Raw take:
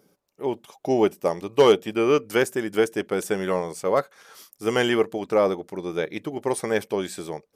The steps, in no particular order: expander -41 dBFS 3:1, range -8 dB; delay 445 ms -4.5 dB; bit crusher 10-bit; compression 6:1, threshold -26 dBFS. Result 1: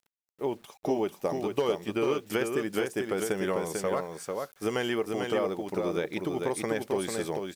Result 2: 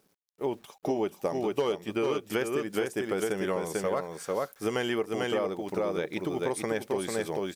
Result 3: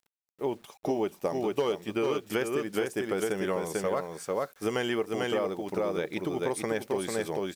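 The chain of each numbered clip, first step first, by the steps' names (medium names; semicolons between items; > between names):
expander > compression > delay > bit crusher; delay > bit crusher > expander > compression; expander > delay > compression > bit crusher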